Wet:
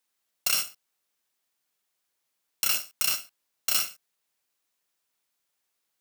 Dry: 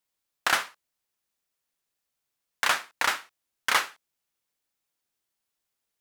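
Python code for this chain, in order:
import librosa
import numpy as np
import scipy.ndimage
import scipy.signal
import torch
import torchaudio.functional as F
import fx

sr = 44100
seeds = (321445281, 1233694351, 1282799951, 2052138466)

p1 = fx.bit_reversed(x, sr, seeds[0], block=128)
p2 = fx.over_compress(p1, sr, threshold_db=-29.0, ratio=-1.0)
p3 = p1 + (p2 * librosa.db_to_amplitude(-1.0))
p4 = fx.low_shelf(p3, sr, hz=160.0, db=-11.0)
y = p4 * librosa.db_to_amplitude(-4.0)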